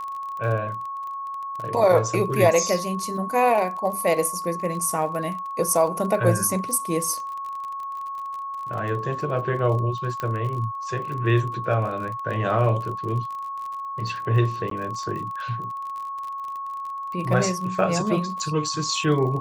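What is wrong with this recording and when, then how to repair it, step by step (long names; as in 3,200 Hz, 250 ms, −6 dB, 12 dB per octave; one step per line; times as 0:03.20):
surface crackle 32 per second −31 dBFS
whistle 1,100 Hz −29 dBFS
0:10.20: click −15 dBFS
0:14.70–0:14.71: drop-out 13 ms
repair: click removal
notch filter 1,100 Hz, Q 30
repair the gap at 0:14.70, 13 ms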